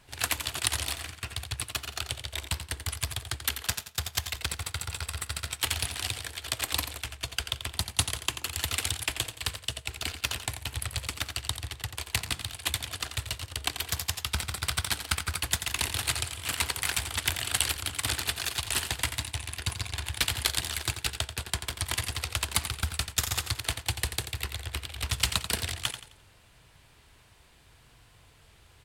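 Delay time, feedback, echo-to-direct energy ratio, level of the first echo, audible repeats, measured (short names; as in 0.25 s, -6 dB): 87 ms, 34%, -9.5 dB, -10.0 dB, 3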